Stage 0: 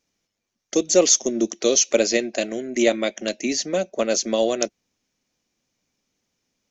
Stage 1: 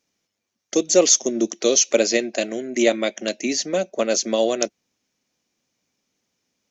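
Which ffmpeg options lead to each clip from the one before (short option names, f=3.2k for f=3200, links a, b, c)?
-af "highpass=f=110:p=1,volume=1dB"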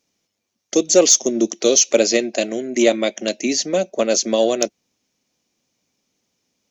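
-af "equalizer=f=1.6k:w=1.5:g=-4,asoftclip=type=tanh:threshold=-3dB,volume=3.5dB"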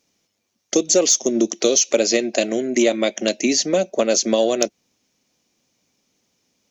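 -af "acompressor=threshold=-18dB:ratio=3,volume=3.5dB"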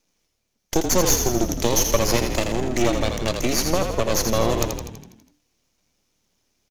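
-filter_complex "[0:a]aphaser=in_gain=1:out_gain=1:delay=2.7:decay=0.21:speed=1.9:type=sinusoidal,aeval=exprs='max(val(0),0)':c=same,asplit=9[a][b][c][d][e][f][g][h][i];[b]adelay=82,afreqshift=-37,volume=-6dB[j];[c]adelay=164,afreqshift=-74,volume=-10.6dB[k];[d]adelay=246,afreqshift=-111,volume=-15.2dB[l];[e]adelay=328,afreqshift=-148,volume=-19.7dB[m];[f]adelay=410,afreqshift=-185,volume=-24.3dB[n];[g]adelay=492,afreqshift=-222,volume=-28.9dB[o];[h]adelay=574,afreqshift=-259,volume=-33.5dB[p];[i]adelay=656,afreqshift=-296,volume=-38.1dB[q];[a][j][k][l][m][n][o][p][q]amix=inputs=9:normalize=0"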